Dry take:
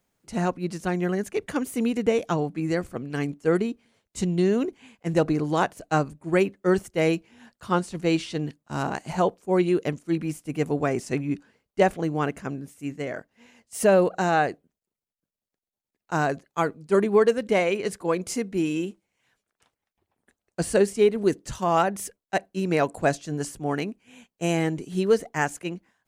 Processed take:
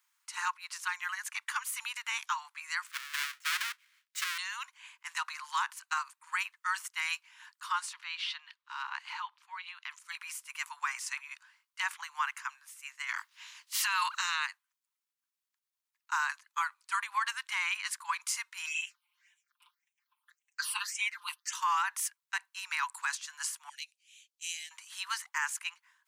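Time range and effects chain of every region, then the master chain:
0:02.86–0:04.38: each half-wave held at its own peak + high-pass filter 1,500 Hz 24 dB per octave + high-shelf EQ 3,600 Hz −8 dB
0:07.93–0:09.91: downward compressor 2.5 to 1, threshold −32 dBFS + high shelf with overshoot 5,400 Hz −13 dB, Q 1.5
0:13.08–0:14.45: ceiling on every frequency bin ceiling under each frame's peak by 20 dB + parametric band 3,800 Hz +6 dB 1.3 octaves
0:18.66–0:21.53: comb filter 5.7 ms, depth 95% + all-pass phaser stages 6, 1.8 Hz, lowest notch 460–1,300 Hz
0:23.69–0:24.71: Chebyshev band-stop filter 330–3,800 Hz + high-shelf EQ 9,900 Hz −6.5 dB
whole clip: Butterworth high-pass 930 Hz 96 dB per octave; brickwall limiter −23.5 dBFS; level +2 dB

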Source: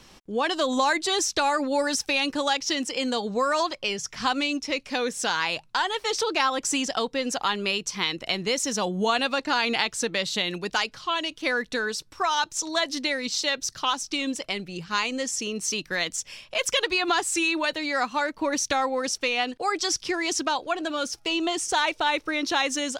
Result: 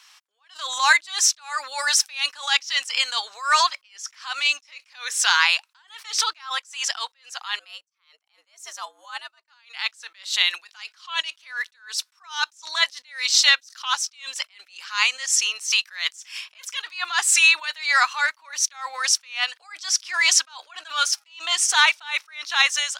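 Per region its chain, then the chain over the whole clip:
0:07.59–0:09.48: frequency shifter +120 Hz + parametric band 3,500 Hz −8.5 dB 2.7 octaves + expander for the loud parts 2.5 to 1, over −40 dBFS
whole clip: automatic gain control gain up to 11 dB; high-pass filter 1,100 Hz 24 dB per octave; level that may rise only so fast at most 160 dB per second; level +1.5 dB

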